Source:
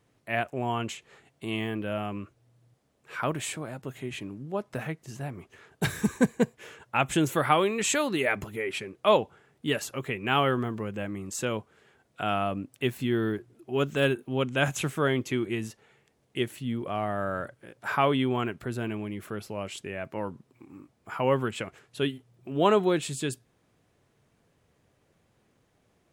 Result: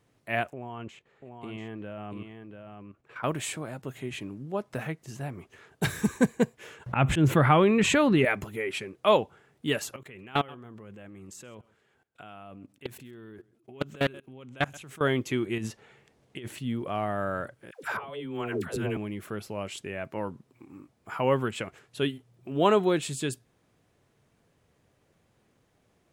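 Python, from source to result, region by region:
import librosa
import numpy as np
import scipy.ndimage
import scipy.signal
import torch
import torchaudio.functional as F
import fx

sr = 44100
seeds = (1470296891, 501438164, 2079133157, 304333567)

y = fx.chain(x, sr, fx.lowpass(hz=2000.0, slope=6),
    fx.level_steps(step_db=13),
    fx.echo_single(ms=689, db=-6.5), at=(0.53, 3.24))
y = fx.chain(y, sr, fx.bass_treble(bass_db=10, treble_db=-14),
    fx.auto_swell(attack_ms=104.0),
    fx.env_flatten(amount_pct=50), at=(6.86, 8.25))
y = fx.chain(y, sr, fx.level_steps(step_db=23),
    fx.echo_single(ms=131, db=-22.0),
    fx.doppler_dist(depth_ms=0.57), at=(9.96, 15.01))
y = fx.chain(y, sr, fx.high_shelf(hz=9700.0, db=-9.5),
    fx.over_compress(threshold_db=-36.0, ratio=-1.0), at=(15.58, 16.59))
y = fx.chain(y, sr, fx.over_compress(threshold_db=-34.0, ratio=-1.0),
    fx.peak_eq(hz=450.0, db=6.5, octaves=0.55),
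    fx.dispersion(late='lows', ms=124.0, hz=550.0), at=(17.71, 18.97))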